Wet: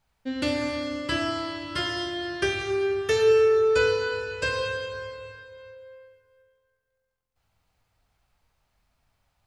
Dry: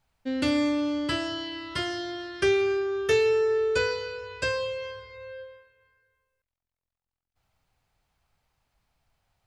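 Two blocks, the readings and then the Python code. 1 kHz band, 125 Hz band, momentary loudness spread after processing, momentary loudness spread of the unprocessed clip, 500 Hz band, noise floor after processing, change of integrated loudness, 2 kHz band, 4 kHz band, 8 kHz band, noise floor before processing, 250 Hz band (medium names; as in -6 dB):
+3.0 dB, +3.0 dB, 15 LU, 15 LU, +2.5 dB, -77 dBFS, +1.5 dB, +2.5 dB, +2.0 dB, +1.5 dB, under -85 dBFS, -3.0 dB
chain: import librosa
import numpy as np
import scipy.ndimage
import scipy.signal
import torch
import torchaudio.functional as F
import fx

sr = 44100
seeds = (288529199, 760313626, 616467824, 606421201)

y = fx.rev_plate(x, sr, seeds[0], rt60_s=2.4, hf_ratio=0.8, predelay_ms=0, drr_db=2.0)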